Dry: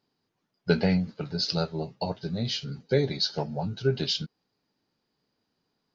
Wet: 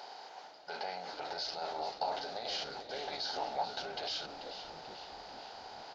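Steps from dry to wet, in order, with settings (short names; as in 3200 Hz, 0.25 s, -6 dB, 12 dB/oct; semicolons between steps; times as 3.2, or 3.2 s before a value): per-bin compression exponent 0.6; reverse; compressor 6:1, threshold -31 dBFS, peak gain reduction 15 dB; reverse; limiter -31.5 dBFS, peak gain reduction 11.5 dB; resonant high-pass 770 Hz, resonance Q 4.9; on a send: frequency-shifting echo 0.438 s, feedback 54%, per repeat -120 Hz, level -10.5 dB; on the sum: Doppler distortion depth 0.12 ms; gain +3 dB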